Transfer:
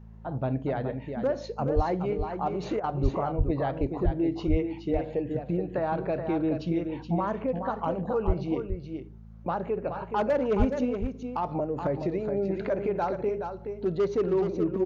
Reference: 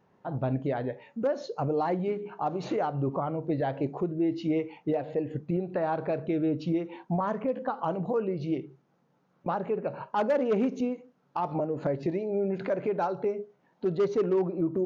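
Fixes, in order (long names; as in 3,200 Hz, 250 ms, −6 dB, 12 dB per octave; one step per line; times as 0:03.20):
hum removal 54.6 Hz, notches 4
high-pass at the plosives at 0:01.75/0:03.02/0:03.37/0:04.04/0:04.50/0:08.26/0:10.58
repair the gap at 0:02.80, 36 ms
echo removal 423 ms −7 dB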